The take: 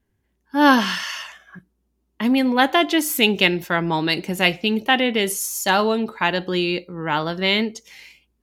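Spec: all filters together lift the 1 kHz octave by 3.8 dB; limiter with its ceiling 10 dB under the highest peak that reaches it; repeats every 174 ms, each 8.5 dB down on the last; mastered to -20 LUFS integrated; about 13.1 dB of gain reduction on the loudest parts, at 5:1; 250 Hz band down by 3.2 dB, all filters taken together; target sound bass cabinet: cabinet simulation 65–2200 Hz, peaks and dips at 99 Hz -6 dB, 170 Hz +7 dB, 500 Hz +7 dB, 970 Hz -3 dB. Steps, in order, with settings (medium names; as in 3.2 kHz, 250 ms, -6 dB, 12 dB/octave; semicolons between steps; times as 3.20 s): peaking EQ 250 Hz -6.5 dB; peaking EQ 1 kHz +6.5 dB; compression 5:1, threshold -22 dBFS; peak limiter -17.5 dBFS; cabinet simulation 65–2200 Hz, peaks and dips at 99 Hz -6 dB, 170 Hz +7 dB, 500 Hz +7 dB, 970 Hz -3 dB; feedback delay 174 ms, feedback 38%, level -8.5 dB; trim +8.5 dB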